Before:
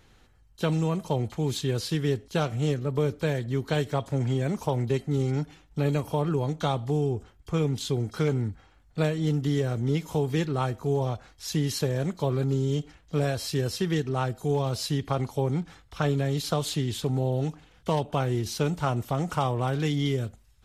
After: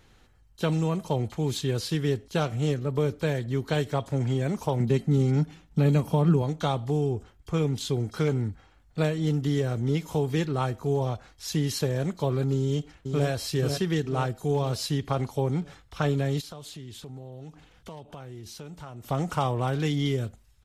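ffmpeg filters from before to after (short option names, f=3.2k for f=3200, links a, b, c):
-filter_complex "[0:a]asettb=1/sr,asplit=3[a][b][c];[a]atrim=end=4.804[d];[b]atrim=start=4.8:end=6.42,asetpts=PTS-STARTPTS,afade=t=in:d=0.004:c=qsin,afade=t=out:st=1.616:d=0.004:c=qsin,equalizer=f=190:w=2.1:g=11.5[e];[c]atrim=start=6.416[f];[d][e]acrossfade=d=0.004:c1=hsin:c2=qsin[g];[g][f]acrossfade=d=0.004:c1=qsin:c2=hsin,asplit=2[h][i];[i]afade=t=in:st=12.56:d=0.01,afade=t=out:st=13.28:d=0.01,aecho=0:1:490|980|1470|1960|2450|2940|3430:0.501187|0.275653|0.151609|0.083385|0.0458618|0.025224|0.0138732[j];[h][j]amix=inputs=2:normalize=0,asplit=3[k][l][m];[k]afade=t=out:st=16.4:d=0.02[n];[l]acompressor=threshold=-43dB:ratio=3:attack=3.2:release=140:knee=1:detection=peak,afade=t=in:st=16.4:d=0.02,afade=t=out:st=19.03:d=0.02[o];[m]afade=t=in:st=19.03:d=0.02[p];[n][o][p]amix=inputs=3:normalize=0"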